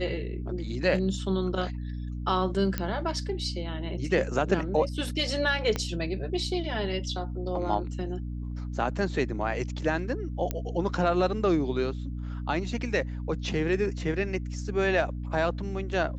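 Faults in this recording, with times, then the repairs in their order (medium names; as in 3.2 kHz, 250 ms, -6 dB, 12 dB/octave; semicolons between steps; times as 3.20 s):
hum 60 Hz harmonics 5 -34 dBFS
2.78 s: pop -14 dBFS
5.76 s: pop -15 dBFS
10.51 s: pop -15 dBFS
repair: de-click; de-hum 60 Hz, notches 5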